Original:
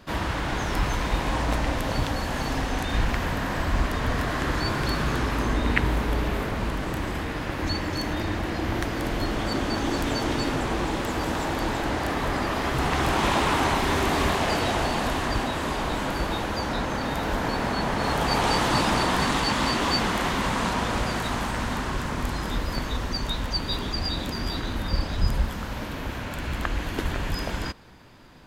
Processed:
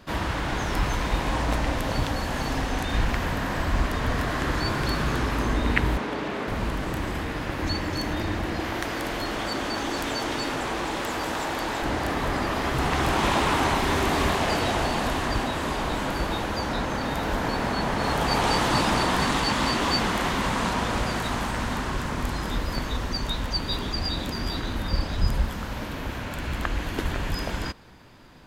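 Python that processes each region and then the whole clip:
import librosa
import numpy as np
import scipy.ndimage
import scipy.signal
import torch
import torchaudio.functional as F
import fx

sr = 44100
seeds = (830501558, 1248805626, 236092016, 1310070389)

y = fx.chain(x, sr, fx.highpass(hz=200.0, slope=12),
    fx.air_absorb(metres=59.0), at=(5.97, 6.48))
y = fx.chain(y, sr, fx.low_shelf(hz=280.0, db=-10.5),
    fx.env_flatten(amount_pct=50), at=(8.6, 11.82))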